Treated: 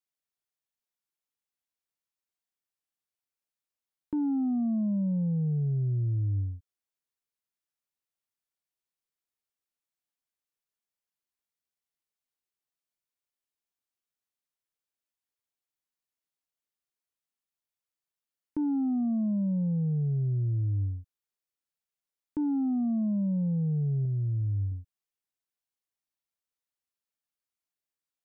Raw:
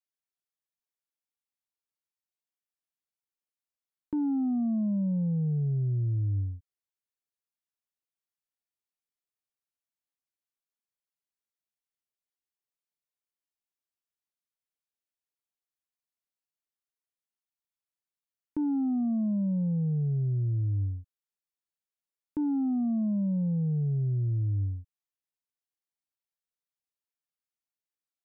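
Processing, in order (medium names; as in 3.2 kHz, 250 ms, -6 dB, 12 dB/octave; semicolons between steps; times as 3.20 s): 24.05–24.72 s: dynamic bell 270 Hz, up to -8 dB, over -51 dBFS, Q 1.5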